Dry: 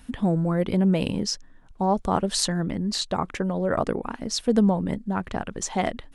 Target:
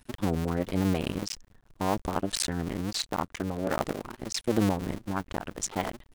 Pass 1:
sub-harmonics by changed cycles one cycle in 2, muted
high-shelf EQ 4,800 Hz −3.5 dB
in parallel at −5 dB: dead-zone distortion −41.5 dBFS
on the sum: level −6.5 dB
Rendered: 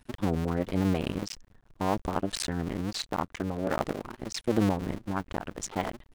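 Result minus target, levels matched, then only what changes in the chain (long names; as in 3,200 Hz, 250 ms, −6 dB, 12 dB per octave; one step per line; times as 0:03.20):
8,000 Hz band −4.0 dB
change: high-shelf EQ 4,800 Hz +3 dB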